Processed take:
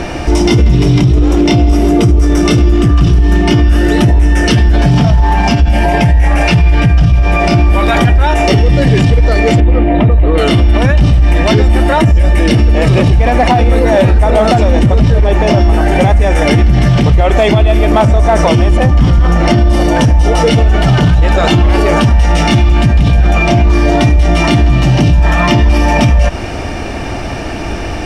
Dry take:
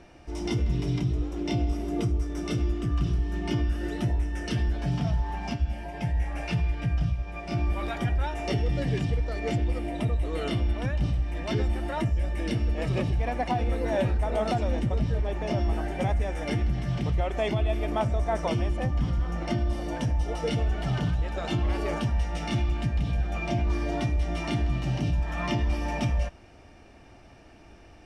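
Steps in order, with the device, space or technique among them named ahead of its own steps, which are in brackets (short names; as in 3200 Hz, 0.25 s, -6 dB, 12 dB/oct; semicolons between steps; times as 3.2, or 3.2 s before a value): 9.6–10.38 air absorption 430 m; loud club master (compressor 2:1, threshold -29 dBFS, peak gain reduction 5 dB; hard clip -23.5 dBFS, distortion -27 dB; maximiser +33.5 dB); gain -1 dB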